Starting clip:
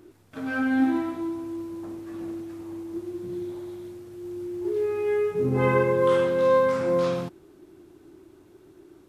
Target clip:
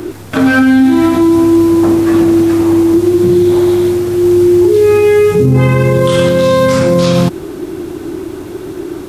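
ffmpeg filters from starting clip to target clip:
-filter_complex "[0:a]acrossover=split=220|3000[a][b][c];[b]acompressor=threshold=-35dB:ratio=6[d];[a][d][c]amix=inputs=3:normalize=0,alimiter=level_in=29.5dB:limit=-1dB:release=50:level=0:latency=1,volume=-1dB"

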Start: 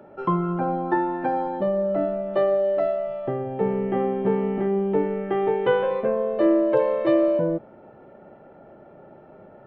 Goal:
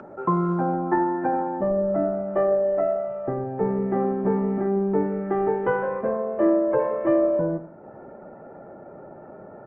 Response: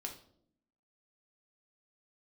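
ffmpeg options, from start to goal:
-filter_complex "[0:a]lowpass=f=1.8k:w=0.5412,lowpass=f=1.8k:w=1.3066,aecho=1:1:92|184|276:0.211|0.0697|0.023,adynamicequalizer=threshold=0.0112:dfrequency=500:dqfactor=5.2:tfrequency=500:tqfactor=5.2:attack=5:release=100:ratio=0.375:range=2.5:mode=cutabove:tftype=bell,acompressor=mode=upward:threshold=-36dB:ratio=2.5,highpass=f=51:w=0.5412,highpass=f=51:w=1.3066,lowshelf=f=72:g=-6,asplit=2[a][b];[1:a]atrim=start_sample=2205,atrim=end_sample=3969[c];[b][c]afir=irnorm=-1:irlink=0,volume=-17.5dB[d];[a][d]amix=inputs=2:normalize=0" -ar 48000 -c:a libopus -b:a 16k

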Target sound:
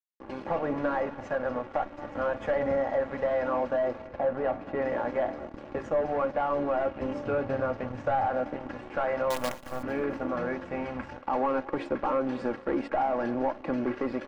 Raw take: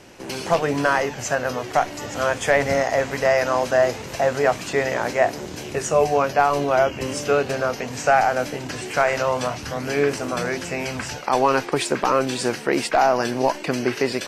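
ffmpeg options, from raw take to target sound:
-filter_complex "[0:a]bandreject=f=93.62:t=h:w=4,bandreject=f=187.24:t=h:w=4,bandreject=f=280.86:t=h:w=4,bandreject=f=374.48:t=h:w=4,bandreject=f=468.1:t=h:w=4,bandreject=f=561.72:t=h:w=4,bandreject=f=655.34:t=h:w=4,bandreject=f=748.96:t=h:w=4,aeval=exprs='sgn(val(0))*max(abs(val(0))-0.0237,0)':c=same,asettb=1/sr,asplit=3[a][b][c];[a]atrim=end=4.074[d];[b]atrim=start=4.07:end=4.82,asetpts=PTS-STARTPTS,afade=t=in:d=0.004:c=qsin,afade=t=out:st=0.746:d=0.004:c=qsin,aemphasis=mode=reproduction:type=75kf[e];[c]atrim=start=4.816[f];[d][e]acrossfade=d=0.004:c1=hsin:c2=qsin[g];[g][f]acrossfade=d=0.004:c1=qsin:c2=hsin,asoftclip=type=tanh:threshold=-20dB,lowpass=1.3k,asettb=1/sr,asplit=3[h][i][j];[h]atrim=end=9.304[k];[i]atrim=start=9.3:end=9.83,asetpts=PTS-STARTPTS,afade=t=in:d=0.004:c=qsin,afade=t=out:st=0.526:d=0.004:c=qsin,acrusher=bits=5:dc=4:mix=0:aa=0.000001[l];[j]atrim=start=9.826[m];[k][l]acrossfade=d=0.004:c1=hsin:c2=qsin[n];[n][m]acrossfade=d=0.004:c1=qsin:c2=hsin,aecho=1:1:3.6:0.52,aecho=1:1:222|444|666:0.0841|0.0353|0.0148,acompressor=threshold=-25dB:ratio=2,asettb=1/sr,asplit=3[o][p][q];[o]atrim=end=7.254[r];[p]atrim=start=7.25:end=8.27,asetpts=PTS-STARTPTS,afade=t=in:d=0.004:c=qsin,afade=t=out:st=1.016:d=0.004:c=qsin,equalizer=f=110:t=o:w=0.58:g=12.5[s];[q]atrim=start=8.266[t];[r][s]acrossfade=d=0.004:c1=hsin:c2=qsin[u];[u][t]acrossfade=d=0.004:c1=qsin:c2=hsin"

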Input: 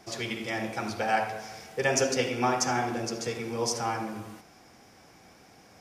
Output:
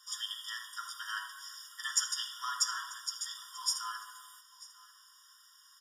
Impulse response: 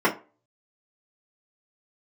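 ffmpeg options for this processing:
-filter_complex "[0:a]aecho=1:1:940:0.0944,asplit=2[a][b];[1:a]atrim=start_sample=2205[c];[b][c]afir=irnorm=-1:irlink=0,volume=-20dB[d];[a][d]amix=inputs=2:normalize=0,aexciter=amount=3.3:drive=3:freq=2.6k,afftfilt=real='re*eq(mod(floor(b*sr/1024/950),2),1)':imag='im*eq(mod(floor(b*sr/1024/950),2),1)':win_size=1024:overlap=0.75,volume=-7dB"

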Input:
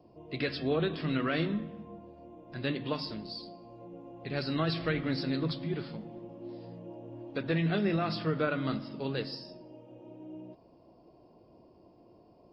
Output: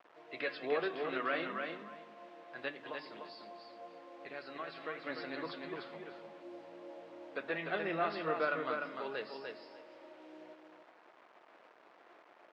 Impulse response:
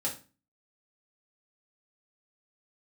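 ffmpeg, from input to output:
-filter_complex "[0:a]asettb=1/sr,asplit=3[a][b][c];[a]atrim=end=2.684[d];[b]atrim=start=2.68:end=5.07,asetpts=PTS-STARTPTS,afade=t=in:d=0.004:c=qsin,afade=t=out:st=2.386:d=0.004:c=qsin,acompressor=threshold=-36dB:ratio=5[e];[c]atrim=start=5.066[f];[d][e]acrossfade=d=0.004:c1=hsin:c2=qsin[g];[g][f]acrossfade=d=0.004:c1=qsin:c2=hsin,flanger=delay=0.8:depth=5.7:regen=80:speed=0.18:shape=triangular,acrusher=bits=9:mix=0:aa=0.000001,highpass=610,lowpass=2.2k,aecho=1:1:298|596|894:0.562|0.09|0.0144,volume=5dB"

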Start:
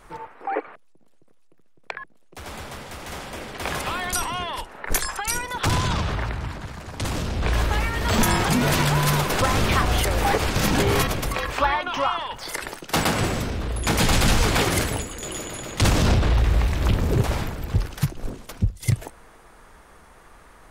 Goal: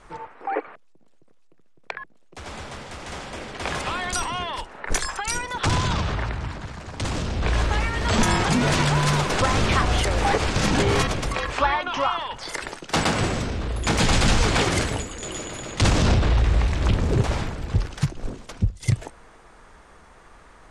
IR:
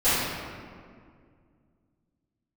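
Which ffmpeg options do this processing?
-af "lowpass=f=8.7k:w=0.5412,lowpass=f=8.7k:w=1.3066"

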